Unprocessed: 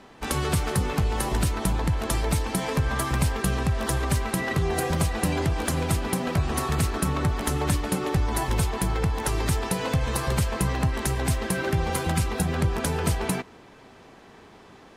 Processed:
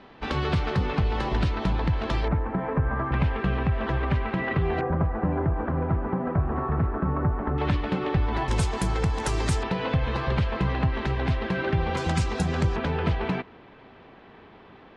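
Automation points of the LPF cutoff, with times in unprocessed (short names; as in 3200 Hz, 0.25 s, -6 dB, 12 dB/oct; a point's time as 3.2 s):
LPF 24 dB/oct
4200 Hz
from 2.28 s 1700 Hz
from 3.12 s 2900 Hz
from 4.81 s 1500 Hz
from 7.58 s 3600 Hz
from 8.48 s 8400 Hz
from 9.63 s 3700 Hz
from 11.97 s 7100 Hz
from 12.76 s 3500 Hz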